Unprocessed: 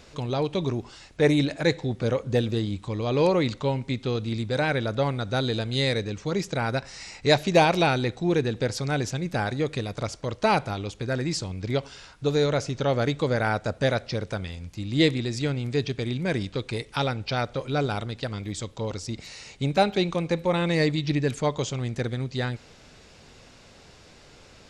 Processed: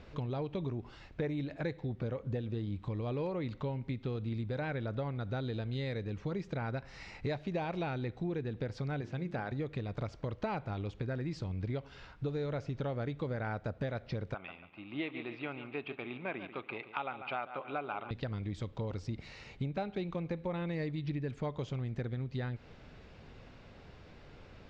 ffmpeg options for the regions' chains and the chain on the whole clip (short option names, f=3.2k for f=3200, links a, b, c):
-filter_complex "[0:a]asettb=1/sr,asplit=3[a][b][c];[a]atrim=end=9.014[d];[b]atrim=start=9.01:end=9.52,asetpts=PTS-STARTPTS,afade=t=in:d=0.004:c=qsin,afade=t=out:st=0.506:d=0.004:c=qsin,bandreject=f=50:t=h:w=6,bandreject=f=100:t=h:w=6,bandreject=f=150:t=h:w=6,bandreject=f=200:t=h:w=6,bandreject=f=250:t=h:w=6,bandreject=f=300:t=h:w=6,bandreject=f=350:t=h:w=6,bandreject=f=400:t=h:w=6,acrossover=split=3300[e][f];[f]acompressor=threshold=-42dB:ratio=4:attack=1:release=60[g];[e][g]amix=inputs=2:normalize=0,highpass=f=160:p=1[h];[c]atrim=start=9.516[i];[d][h]acrossfade=d=0.004:c1=hsin:c2=qsin[j];[j][i]acrossfade=d=0.004:c1=qsin:c2=hsin,asettb=1/sr,asplit=3[k][l][m];[k]atrim=end=14.344[n];[l]atrim=start=14.34:end=18.11,asetpts=PTS-STARTPTS,afade=t=in:d=0.004:c=qsin,afade=t=out:st=3.766:d=0.004:c=qsin,highpass=470,equalizer=f=480:t=q:w=4:g=-9,equalizer=f=790:t=q:w=4:g=4,equalizer=f=1.2k:t=q:w=4:g=6,equalizer=f=1.8k:t=q:w=4:g=-7,equalizer=f=2.6k:t=q:w=4:g=7,lowpass=f=2.9k:w=0.5412,lowpass=f=2.9k:w=1.3066,aecho=1:1:142|284|426|568:0.211|0.0803|0.0305|0.0116,atrim=end_sample=166257[o];[m]atrim=start=18.106[p];[n][o]acrossfade=d=0.004:c1=hsin:c2=qsin[q];[q][p]acrossfade=d=0.004:c1=qsin:c2=hsin,lowpass=2.8k,lowshelf=f=220:g=6,acompressor=threshold=-29dB:ratio=6,volume=-4.5dB"